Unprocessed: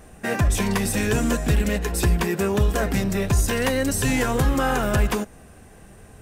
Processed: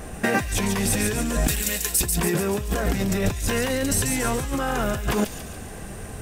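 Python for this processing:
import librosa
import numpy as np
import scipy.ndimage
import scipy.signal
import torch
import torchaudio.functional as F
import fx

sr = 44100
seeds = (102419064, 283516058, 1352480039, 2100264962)

y = fx.pre_emphasis(x, sr, coefficient=0.9, at=(1.47, 2.01))
y = fx.over_compress(y, sr, threshold_db=-28.0, ratio=-1.0)
y = fx.echo_wet_highpass(y, sr, ms=141, feedback_pct=53, hz=3100.0, wet_db=-4.0)
y = y * librosa.db_to_amplitude(4.0)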